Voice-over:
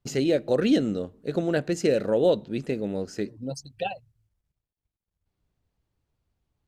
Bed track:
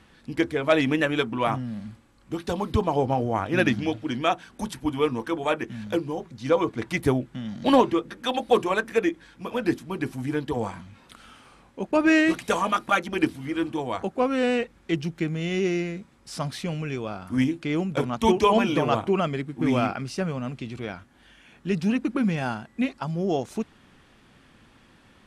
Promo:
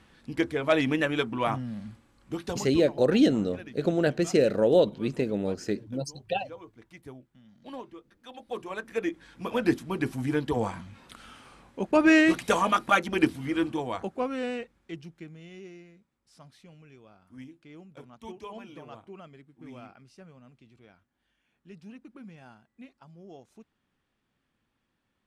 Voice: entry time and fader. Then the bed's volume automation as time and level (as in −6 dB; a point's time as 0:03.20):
2.50 s, +0.5 dB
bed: 0:02.45 −3 dB
0:02.99 −23 dB
0:08.14 −23 dB
0:09.39 0 dB
0:13.58 0 dB
0:15.80 −22.5 dB